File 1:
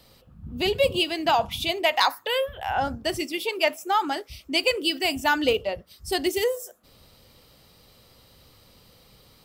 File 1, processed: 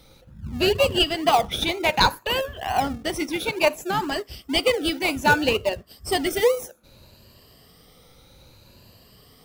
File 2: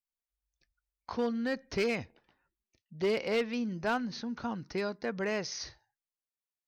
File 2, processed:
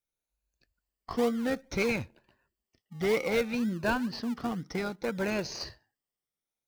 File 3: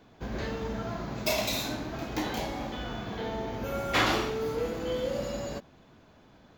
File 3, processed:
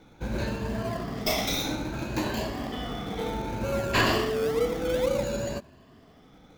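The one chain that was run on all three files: moving spectral ripple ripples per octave 1.4, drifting +0.61 Hz, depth 11 dB; in parallel at -8 dB: decimation with a swept rate 35×, swing 60% 2.1 Hz

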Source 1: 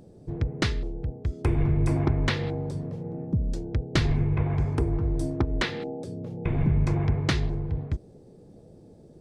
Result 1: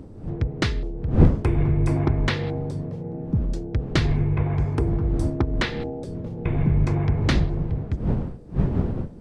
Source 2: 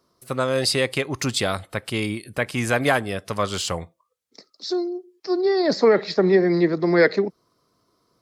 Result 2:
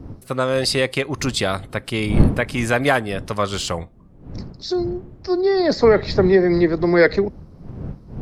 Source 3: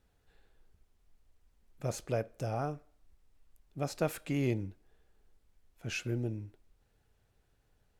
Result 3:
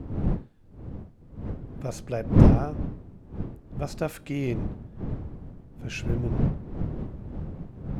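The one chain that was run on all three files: wind noise 180 Hz -30 dBFS; high shelf 6700 Hz -4.5 dB; gain +2.5 dB

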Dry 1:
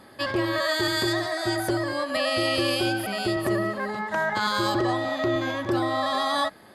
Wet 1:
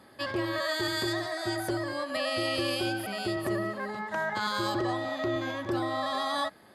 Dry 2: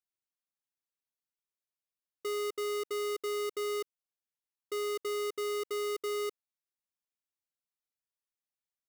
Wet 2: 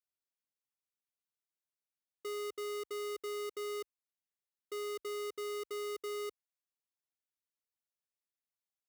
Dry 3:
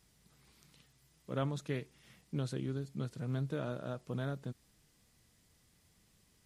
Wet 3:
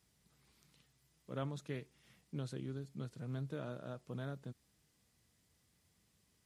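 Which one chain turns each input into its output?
HPF 47 Hz 24 dB/oct; gain -5.5 dB

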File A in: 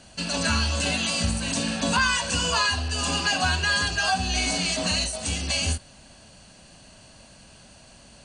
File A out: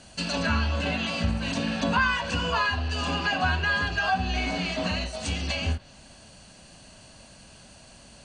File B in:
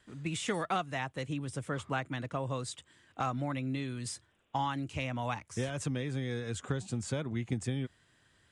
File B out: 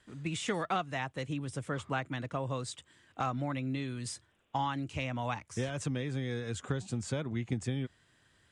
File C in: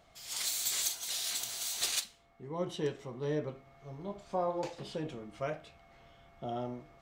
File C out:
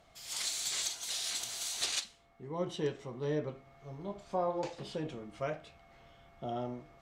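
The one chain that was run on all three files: treble ducked by the level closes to 2500 Hz, closed at -21.5 dBFS

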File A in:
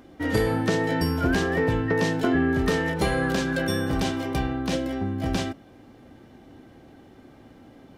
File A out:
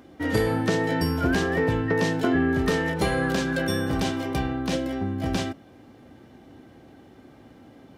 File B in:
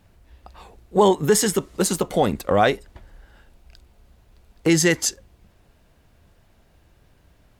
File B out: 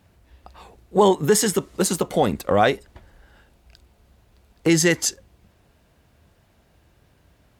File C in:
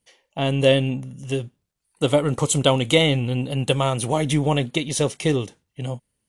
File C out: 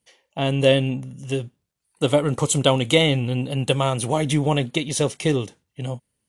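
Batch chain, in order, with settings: HPF 51 Hz

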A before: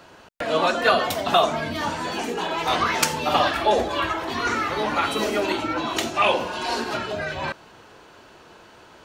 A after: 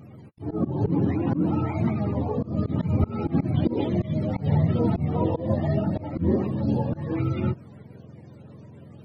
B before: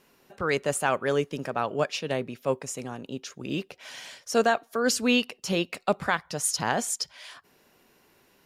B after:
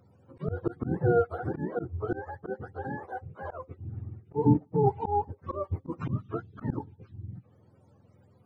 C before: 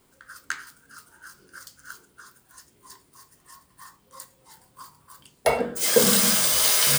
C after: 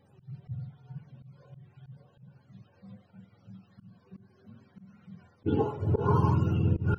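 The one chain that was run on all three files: spectrum mirrored in octaves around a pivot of 450 Hz; auto swell 0.167 s; gain +2.5 dB

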